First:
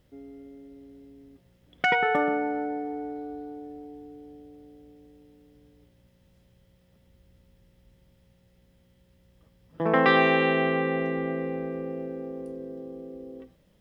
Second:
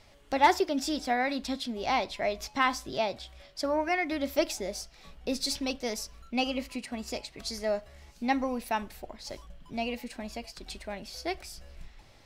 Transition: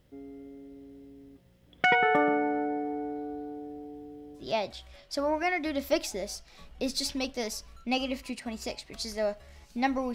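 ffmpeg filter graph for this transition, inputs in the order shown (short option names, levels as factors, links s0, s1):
-filter_complex "[0:a]apad=whole_dur=10.14,atrim=end=10.14,atrim=end=4.5,asetpts=PTS-STARTPTS[s0];[1:a]atrim=start=2.8:end=8.6,asetpts=PTS-STARTPTS[s1];[s0][s1]acrossfade=d=0.16:c1=tri:c2=tri"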